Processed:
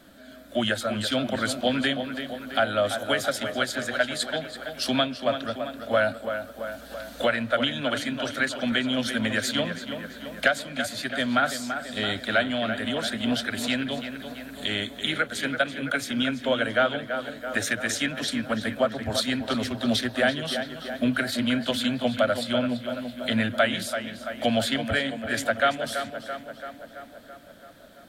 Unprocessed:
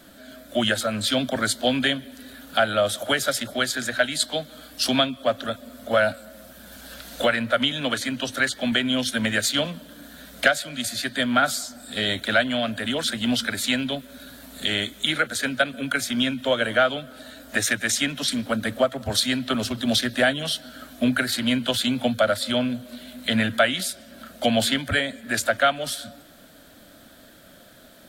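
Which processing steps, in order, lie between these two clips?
treble shelf 4.6 kHz -6 dB; tape echo 334 ms, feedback 69%, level -7.5 dB, low-pass 3.1 kHz; trim -2.5 dB

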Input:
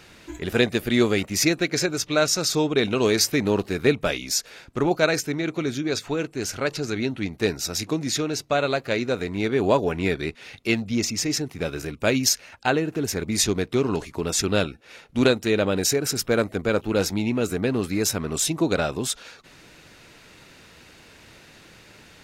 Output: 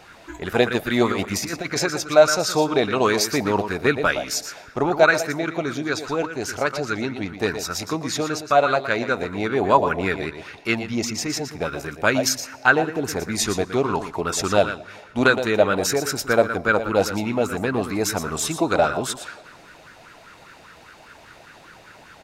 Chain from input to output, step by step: 1.12–1.84 s: compressor with a negative ratio -24 dBFS, ratio -0.5; delay 117 ms -10.5 dB; on a send at -22 dB: reverberation RT60 2.3 s, pre-delay 103 ms; on the sum: sweeping bell 5 Hz 660–1500 Hz +16 dB; trim -2 dB

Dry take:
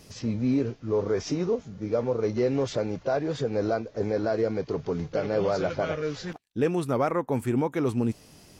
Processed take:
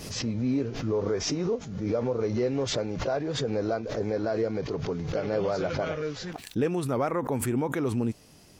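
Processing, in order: swell ahead of each attack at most 52 dB/s; trim -2.5 dB

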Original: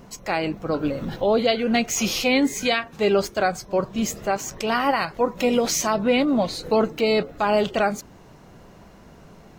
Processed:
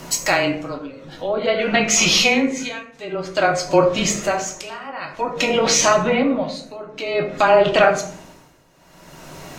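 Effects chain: low-pass that closes with the level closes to 1.6 kHz, closed at -15 dBFS; tilt EQ +2.5 dB/octave; in parallel at +2 dB: compression, threshold -31 dBFS, peak gain reduction 13.5 dB; on the sum: tremolo 0.52 Hz, depth 91%; frequency shift -18 Hz; on a send at -1.5 dB: reverberation RT60 0.60 s, pre-delay 3 ms; on the sum: trim +4.5 dB

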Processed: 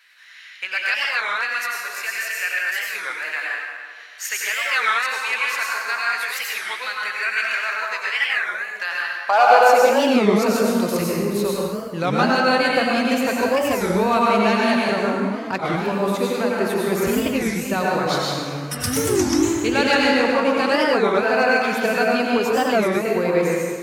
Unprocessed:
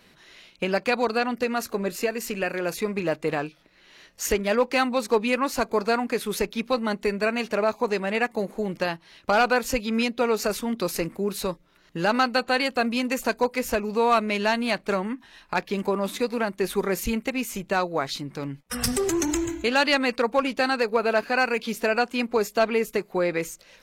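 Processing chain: high-pass sweep 1.7 kHz -> 94 Hz, 8.80–10.84 s; 18.07–18.81 s: tilt shelf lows -5 dB; plate-style reverb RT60 1.9 s, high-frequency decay 0.65×, pre-delay 80 ms, DRR -4.5 dB; warped record 33 1/3 rpm, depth 250 cents; trim -1 dB

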